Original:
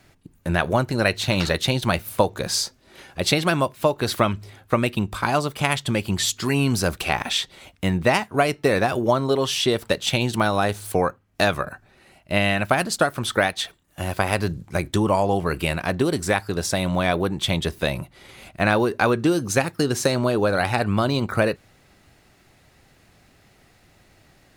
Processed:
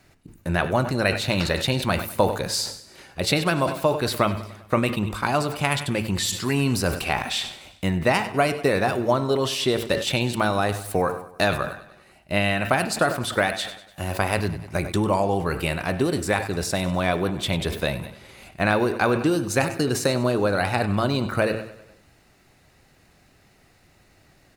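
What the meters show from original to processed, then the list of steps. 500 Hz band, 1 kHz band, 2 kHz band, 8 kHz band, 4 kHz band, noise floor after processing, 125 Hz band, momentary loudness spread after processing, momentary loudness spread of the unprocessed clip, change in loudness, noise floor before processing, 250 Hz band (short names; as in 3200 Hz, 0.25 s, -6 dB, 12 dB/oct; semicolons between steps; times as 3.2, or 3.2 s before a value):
-1.0 dB, -1.0 dB, -1.0 dB, -2.0 dB, -2.0 dB, -58 dBFS, -1.0 dB, 6 LU, 5 LU, -1.5 dB, -57 dBFS, -1.0 dB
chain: notch 3300 Hz, Q 18; de-hum 111.2 Hz, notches 32; dynamic EQ 6100 Hz, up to -4 dB, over -47 dBFS, Q 5.2; feedback echo 98 ms, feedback 57%, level -17 dB; sustainer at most 99 dB/s; gain -1.5 dB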